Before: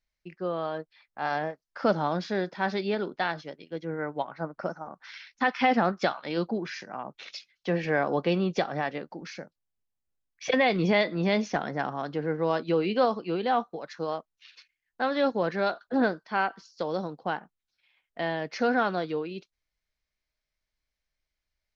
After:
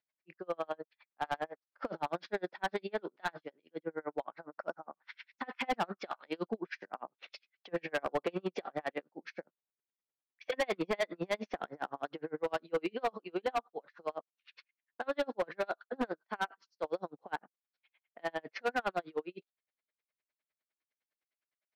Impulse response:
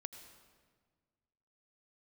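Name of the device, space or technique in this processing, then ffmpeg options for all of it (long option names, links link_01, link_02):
helicopter radio: -af "highpass=320,lowpass=2900,aeval=exprs='val(0)*pow(10,-40*(0.5-0.5*cos(2*PI*9.8*n/s))/20)':channel_layout=same,asoftclip=type=hard:threshold=-28dB,volume=2dB"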